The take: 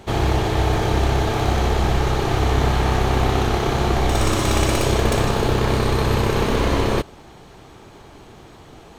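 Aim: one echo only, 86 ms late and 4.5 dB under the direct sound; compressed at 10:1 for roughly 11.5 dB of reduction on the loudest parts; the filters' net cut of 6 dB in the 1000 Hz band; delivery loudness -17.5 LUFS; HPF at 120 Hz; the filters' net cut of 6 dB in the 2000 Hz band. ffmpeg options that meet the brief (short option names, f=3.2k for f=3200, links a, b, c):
-af "highpass=120,equalizer=f=1k:t=o:g=-7,equalizer=f=2k:t=o:g=-5.5,acompressor=threshold=-30dB:ratio=10,aecho=1:1:86:0.596,volume=15.5dB"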